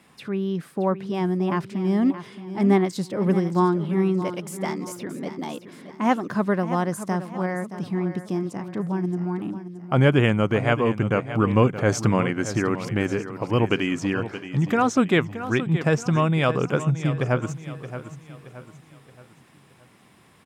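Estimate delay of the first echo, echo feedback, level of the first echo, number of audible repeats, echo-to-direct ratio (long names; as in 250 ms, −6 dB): 623 ms, 41%, −12.0 dB, 3, −11.0 dB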